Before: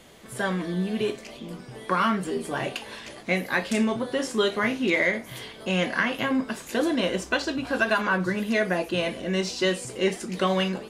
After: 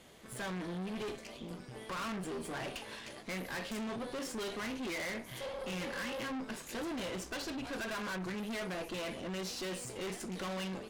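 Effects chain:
healed spectral selection 0:05.44–0:06.24, 450–980 Hz after
tube saturation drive 34 dB, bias 0.7
level −3 dB

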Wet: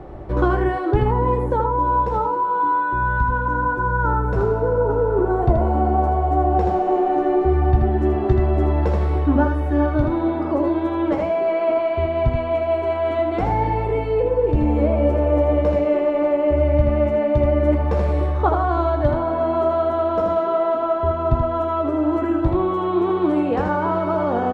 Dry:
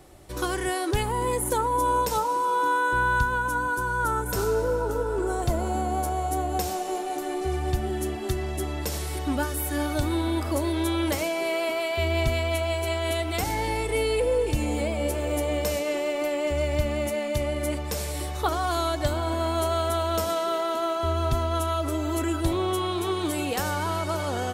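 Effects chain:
speech leveller 0.5 s
low-pass filter 1,100 Hz 12 dB per octave
on a send: ambience of single reflections 17 ms −9.5 dB, 80 ms −5.5 dB
on the sum: level +7 dB

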